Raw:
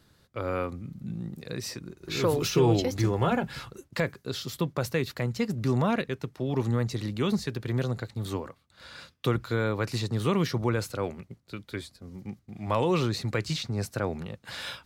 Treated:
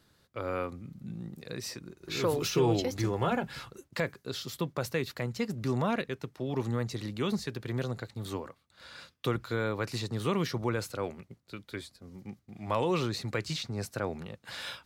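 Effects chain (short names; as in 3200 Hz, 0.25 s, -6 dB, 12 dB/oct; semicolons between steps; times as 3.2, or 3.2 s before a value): low shelf 200 Hz -4.5 dB; gain -2.5 dB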